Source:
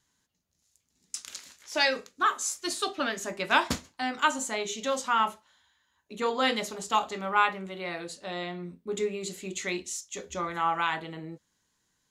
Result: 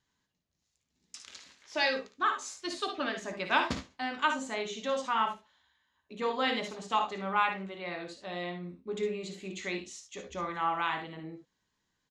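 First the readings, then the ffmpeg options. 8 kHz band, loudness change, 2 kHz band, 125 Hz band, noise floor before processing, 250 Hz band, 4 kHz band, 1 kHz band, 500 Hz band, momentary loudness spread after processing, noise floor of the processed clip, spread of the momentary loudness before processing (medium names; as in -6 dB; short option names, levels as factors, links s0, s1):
-11.5 dB, -3.5 dB, -3.5 dB, -2.5 dB, -76 dBFS, -2.5 dB, -4.0 dB, -3.0 dB, -2.5 dB, 16 LU, -81 dBFS, 13 LU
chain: -filter_complex "[0:a]lowpass=4600,bandreject=f=1400:w=18,asplit=2[s0][s1];[s1]aecho=0:1:57|72:0.355|0.282[s2];[s0][s2]amix=inputs=2:normalize=0,volume=0.668"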